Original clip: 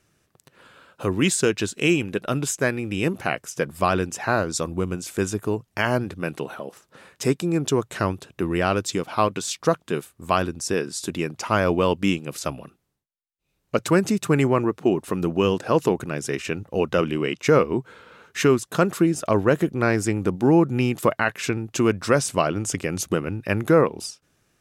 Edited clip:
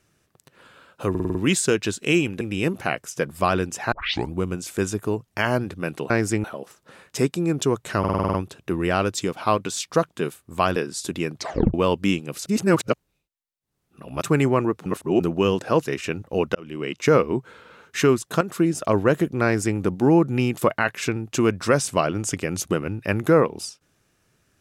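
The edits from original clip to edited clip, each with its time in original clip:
0:01.10: stutter 0.05 s, 6 plays
0:02.16–0:02.81: remove
0:04.32: tape start 0.40 s
0:08.05: stutter 0.05 s, 8 plays
0:10.47–0:10.75: remove
0:11.36: tape stop 0.37 s
0:12.45–0:14.21: reverse
0:14.85–0:15.19: reverse
0:15.85–0:16.27: remove
0:16.96–0:17.43: fade in
0:18.82–0:19.16: fade in equal-power, from −12.5 dB
0:19.85–0:20.19: duplicate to 0:06.50

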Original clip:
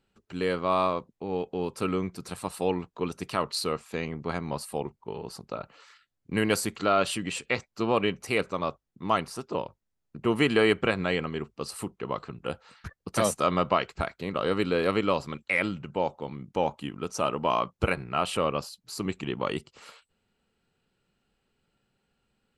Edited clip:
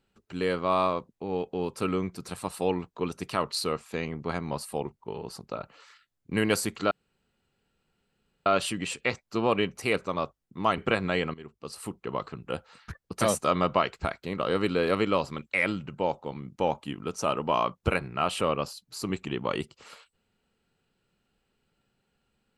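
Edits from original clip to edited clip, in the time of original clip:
0:06.91: splice in room tone 1.55 s
0:09.23–0:10.74: remove
0:11.30–0:12.00: fade in, from −15.5 dB

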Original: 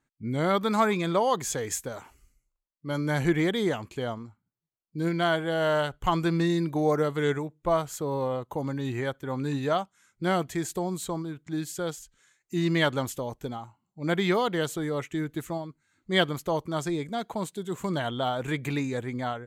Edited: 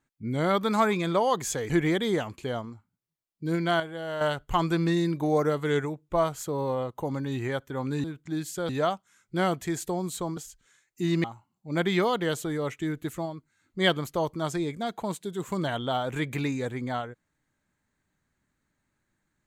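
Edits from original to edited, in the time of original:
0:01.70–0:03.23: remove
0:05.33–0:05.74: clip gain −8 dB
0:11.25–0:11.90: move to 0:09.57
0:12.77–0:13.56: remove

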